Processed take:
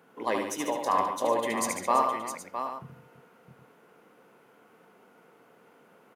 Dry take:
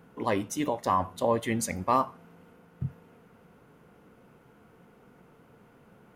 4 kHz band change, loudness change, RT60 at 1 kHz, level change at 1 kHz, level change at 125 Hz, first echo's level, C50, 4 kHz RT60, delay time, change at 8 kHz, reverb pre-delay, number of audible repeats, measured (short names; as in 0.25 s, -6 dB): +2.0 dB, +0.5 dB, none, +2.0 dB, -13.0 dB, -5.0 dB, none, none, 75 ms, +2.0 dB, none, 6